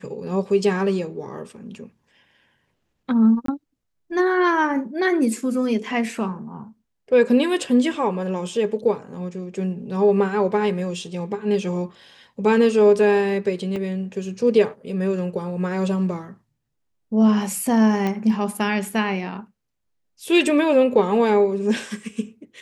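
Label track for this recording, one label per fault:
3.460000	3.480000	dropout 23 ms
13.760000	13.760000	dropout 2.5 ms
18.070000	18.070000	pop -13 dBFS

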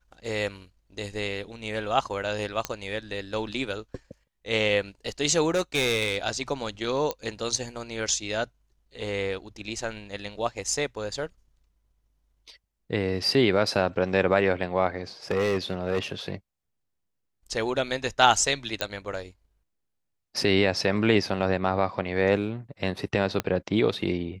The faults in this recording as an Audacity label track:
2.650000	2.650000	pop -12 dBFS
5.490000	6.170000	clipped -19.5 dBFS
7.110000	7.110000	pop -15 dBFS
15.310000	16.120000	clipped -20 dBFS
18.810000	18.810000	pop -10 dBFS
23.400000	23.400000	pop -11 dBFS

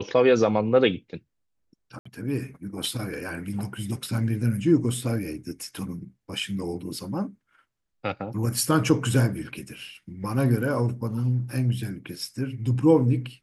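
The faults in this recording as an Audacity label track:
1.990000	2.060000	dropout 65 ms

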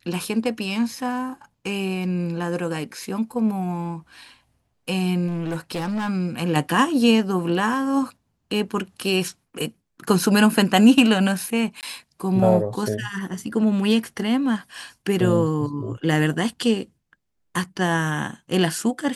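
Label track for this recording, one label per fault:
5.270000	6.090000	clipped -22.5 dBFS
11.810000	11.830000	dropout 18 ms

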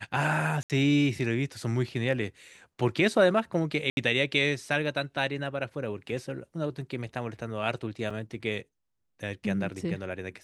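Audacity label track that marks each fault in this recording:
0.630000	0.700000	dropout 68 ms
3.900000	3.970000	dropout 71 ms
8.100000	8.100000	dropout 4.7 ms

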